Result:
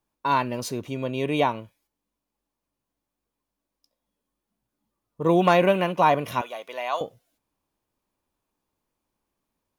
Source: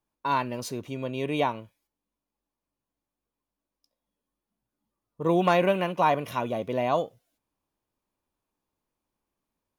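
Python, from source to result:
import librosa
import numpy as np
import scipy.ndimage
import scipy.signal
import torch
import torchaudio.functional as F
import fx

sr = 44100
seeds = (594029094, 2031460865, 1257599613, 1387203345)

y = fx.highpass(x, sr, hz=970.0, slope=12, at=(6.41, 7.01))
y = F.gain(torch.from_numpy(y), 3.5).numpy()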